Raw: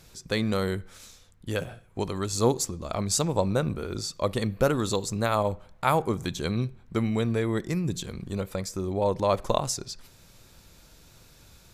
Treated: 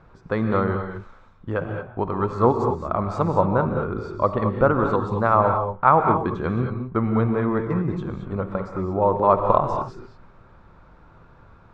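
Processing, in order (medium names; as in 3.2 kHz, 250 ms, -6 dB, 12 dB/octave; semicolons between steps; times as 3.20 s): resonant low-pass 1.2 kHz, resonance Q 2.5; gated-style reverb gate 250 ms rising, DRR 4.5 dB; trim +3 dB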